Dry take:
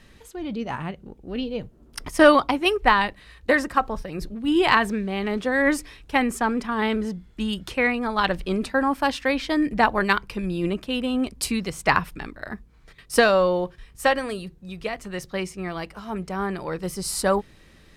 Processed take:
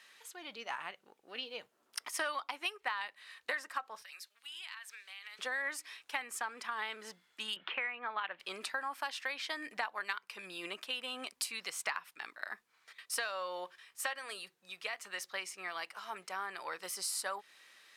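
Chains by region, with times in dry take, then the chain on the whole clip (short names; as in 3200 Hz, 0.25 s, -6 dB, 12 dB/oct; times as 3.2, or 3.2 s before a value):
4.02–5.39 Bessel high-pass 2400 Hz + compressor 5:1, threshold -42 dBFS
7.56–8.4 steep low-pass 3100 Hz + three-band squash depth 40%
whole clip: HPF 1100 Hz 12 dB/oct; compressor 5:1, threshold -33 dBFS; gain -2 dB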